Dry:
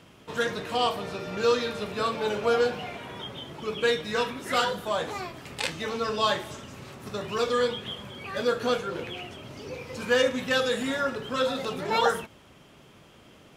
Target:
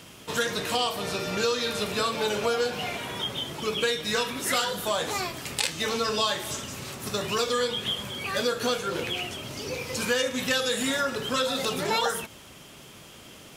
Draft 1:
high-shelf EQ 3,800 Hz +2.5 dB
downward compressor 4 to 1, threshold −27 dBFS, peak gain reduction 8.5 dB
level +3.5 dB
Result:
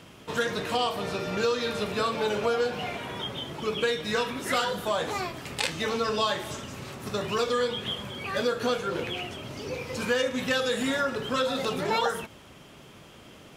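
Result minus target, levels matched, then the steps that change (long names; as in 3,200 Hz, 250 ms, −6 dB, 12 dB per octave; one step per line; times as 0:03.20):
8,000 Hz band −6.5 dB
change: high-shelf EQ 3,800 Hz +13.5 dB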